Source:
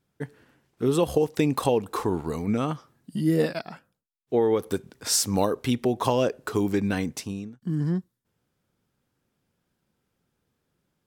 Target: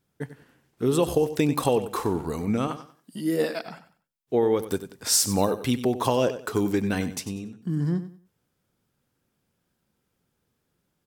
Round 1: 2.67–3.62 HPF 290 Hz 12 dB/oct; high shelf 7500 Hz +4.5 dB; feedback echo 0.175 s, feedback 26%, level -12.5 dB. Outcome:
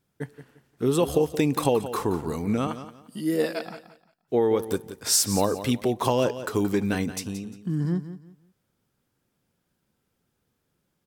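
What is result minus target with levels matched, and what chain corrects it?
echo 81 ms late
2.67–3.62 HPF 290 Hz 12 dB/oct; high shelf 7500 Hz +4.5 dB; feedback echo 94 ms, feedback 26%, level -12.5 dB

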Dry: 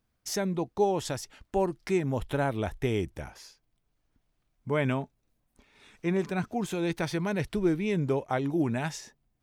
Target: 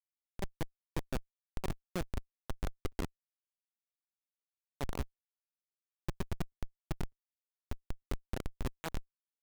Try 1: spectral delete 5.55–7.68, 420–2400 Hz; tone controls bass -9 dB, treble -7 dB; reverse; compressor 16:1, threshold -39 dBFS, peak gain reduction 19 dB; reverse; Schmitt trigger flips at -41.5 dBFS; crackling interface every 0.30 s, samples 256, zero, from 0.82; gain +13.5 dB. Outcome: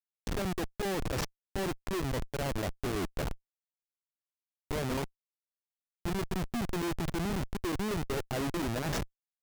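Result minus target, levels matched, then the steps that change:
Schmitt trigger: distortion -19 dB
change: Schmitt trigger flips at -35 dBFS

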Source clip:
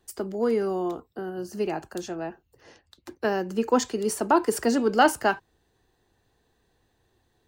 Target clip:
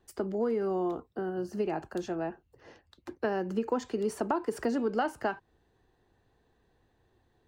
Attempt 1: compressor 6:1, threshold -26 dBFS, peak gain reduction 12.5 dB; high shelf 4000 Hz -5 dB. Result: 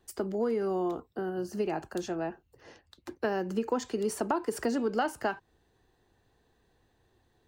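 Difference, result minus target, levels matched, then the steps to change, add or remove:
8000 Hz band +6.0 dB
change: high shelf 4000 Hz -13 dB

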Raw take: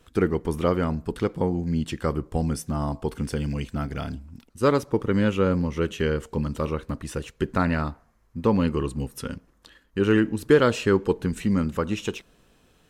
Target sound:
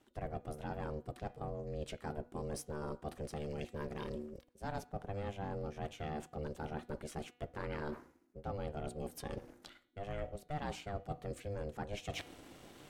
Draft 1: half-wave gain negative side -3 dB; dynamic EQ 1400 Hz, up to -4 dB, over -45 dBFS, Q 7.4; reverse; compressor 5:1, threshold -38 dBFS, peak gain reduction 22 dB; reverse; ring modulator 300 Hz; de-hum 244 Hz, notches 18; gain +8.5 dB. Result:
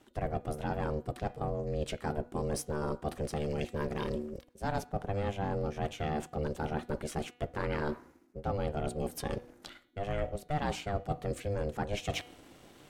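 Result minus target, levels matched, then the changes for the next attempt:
compressor: peak gain reduction -7.5 dB
change: compressor 5:1, threshold -47.5 dBFS, peak gain reduction 29.5 dB

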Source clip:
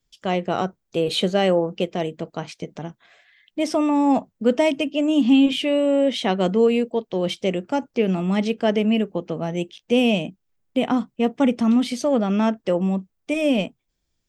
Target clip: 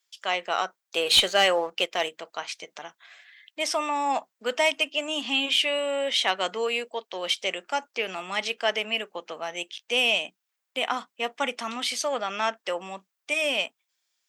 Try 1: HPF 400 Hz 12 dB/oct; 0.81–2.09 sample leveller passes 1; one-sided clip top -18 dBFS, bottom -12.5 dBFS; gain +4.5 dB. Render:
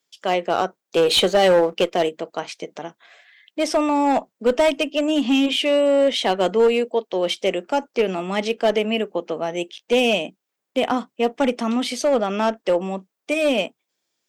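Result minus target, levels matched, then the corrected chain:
500 Hz band +5.0 dB
HPF 1100 Hz 12 dB/oct; 0.81–2.09 sample leveller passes 1; one-sided clip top -18 dBFS, bottom -12.5 dBFS; gain +4.5 dB

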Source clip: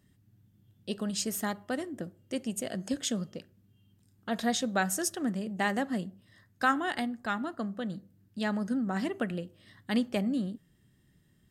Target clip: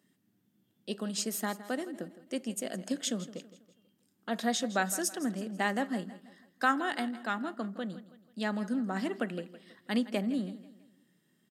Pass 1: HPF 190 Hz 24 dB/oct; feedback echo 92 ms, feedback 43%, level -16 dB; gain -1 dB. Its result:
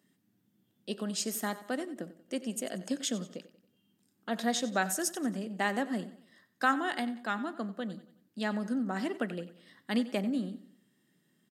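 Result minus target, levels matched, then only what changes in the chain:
echo 71 ms early
change: feedback echo 0.163 s, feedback 43%, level -16 dB

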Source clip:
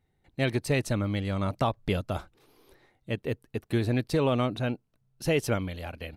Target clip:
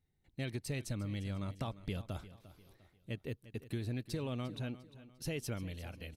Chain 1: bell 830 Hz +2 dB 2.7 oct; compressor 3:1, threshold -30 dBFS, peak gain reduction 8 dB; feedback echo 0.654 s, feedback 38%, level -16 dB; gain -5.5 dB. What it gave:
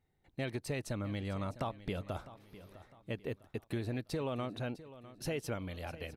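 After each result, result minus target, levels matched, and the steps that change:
echo 0.304 s late; 1000 Hz band +5.5 dB
change: feedback echo 0.35 s, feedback 38%, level -16 dB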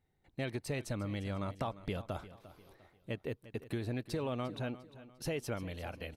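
1000 Hz band +5.5 dB
change: bell 830 Hz -8 dB 2.7 oct

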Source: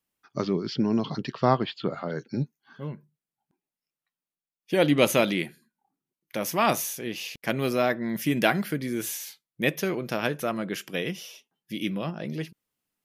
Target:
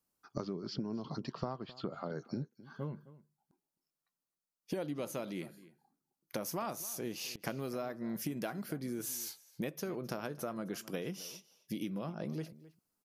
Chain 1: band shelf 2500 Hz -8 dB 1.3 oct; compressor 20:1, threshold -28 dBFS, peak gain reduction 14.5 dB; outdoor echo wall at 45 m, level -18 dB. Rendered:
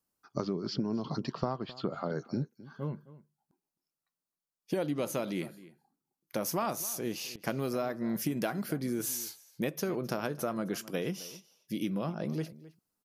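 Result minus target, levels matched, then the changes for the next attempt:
compressor: peak gain reduction -6 dB
change: compressor 20:1, threshold -34.5 dBFS, peak gain reduction 21 dB

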